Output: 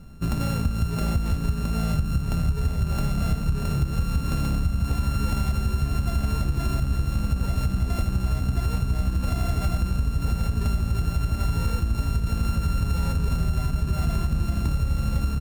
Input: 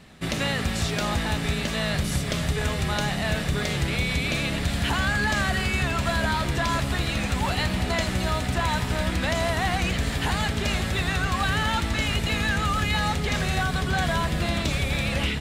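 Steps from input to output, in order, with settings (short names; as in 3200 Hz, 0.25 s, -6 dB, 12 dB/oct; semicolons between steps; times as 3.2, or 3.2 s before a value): sample sorter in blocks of 32 samples; tilt -4.5 dB/oct; on a send: echo 0.254 s -20.5 dB; on the sum: compressor, threshold -13 dBFS, peak gain reduction 9.5 dB; pre-emphasis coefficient 0.8; notch 3200 Hz, Q 22; gain +7.5 dB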